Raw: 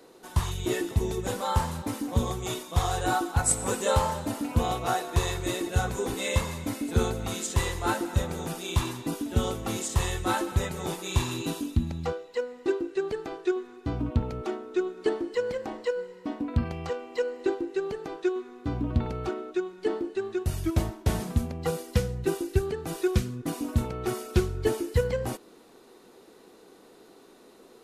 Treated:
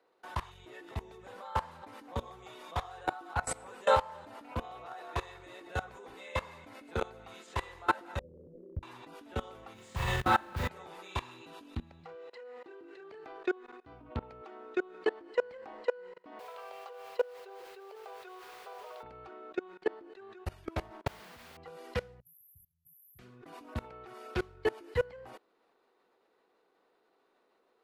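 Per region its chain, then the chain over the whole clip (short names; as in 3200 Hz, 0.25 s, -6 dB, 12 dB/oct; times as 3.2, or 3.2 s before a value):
8.19–8.83 steep low-pass 570 Hz 96 dB/oct + compressor 2:1, threshold -36 dBFS + low shelf 180 Hz +9 dB
9.74–10.69 resonant low shelf 270 Hz +8.5 dB, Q 1.5 + modulation noise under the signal 19 dB + flutter echo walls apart 6.9 m, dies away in 0.47 s
12–13.24 HPF 88 Hz + compressor 1.5:1, threshold -36 dBFS + doubler 30 ms -4.5 dB
16.39–19.03 brick-wall FIR high-pass 380 Hz + bell 1900 Hz -11 dB 0.5 oct + requantised 8-bit, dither triangular
21.07–21.57 steep low-pass 7500 Hz + compressor 5:1, threshold -33 dBFS + requantised 6-bit, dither triangular
22.2–23.19 brick-wall FIR band-stop 160–11000 Hz + tilt +4.5 dB/oct
whole clip: bell 4700 Hz +3.5 dB 0.5 oct; level quantiser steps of 24 dB; three-band isolator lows -14 dB, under 490 Hz, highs -18 dB, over 3000 Hz; gain +5 dB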